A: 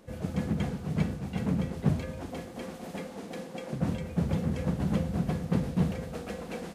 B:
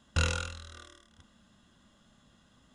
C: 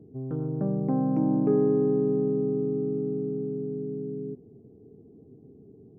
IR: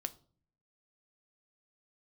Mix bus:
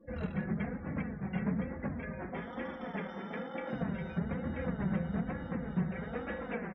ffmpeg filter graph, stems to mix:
-filter_complex "[0:a]lowpass=f=1900:t=q:w=2.5,volume=1.19[s0];[1:a]lowpass=5900,tiltshelf=f=1300:g=5,volume=0.2[s1];[2:a]acompressor=threshold=0.0282:ratio=6,aeval=exprs='val(0)*sgn(sin(2*PI*1100*n/s))':c=same,adelay=2200,volume=0.2[s2];[s0][s2]amix=inputs=2:normalize=0,lowpass=4900,alimiter=limit=0.0891:level=0:latency=1:release=257,volume=1[s3];[s1][s3]amix=inputs=2:normalize=0,afftdn=nr=29:nf=-51,flanger=delay=3.5:depth=1.9:regen=15:speed=1.1:shape=sinusoidal"

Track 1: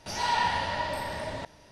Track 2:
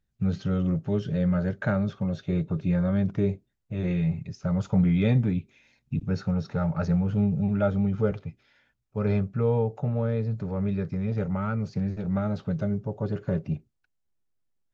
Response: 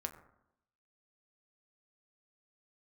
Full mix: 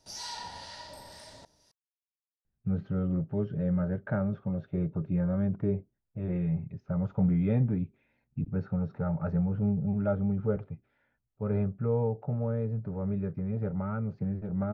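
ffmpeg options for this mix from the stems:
-filter_complex "[0:a]highshelf=f=3600:t=q:w=1.5:g=10,acrossover=split=1000[s0][s1];[s0]aeval=exprs='val(0)*(1-0.5/2+0.5/2*cos(2*PI*2*n/s))':c=same[s2];[s1]aeval=exprs='val(0)*(1-0.5/2-0.5/2*cos(2*PI*2*n/s))':c=same[s3];[s2][s3]amix=inputs=2:normalize=0,volume=0.224[s4];[1:a]lowpass=1400,adelay=2450,volume=0.631[s5];[s4][s5]amix=inputs=2:normalize=0,bandreject=f=1100:w=20"

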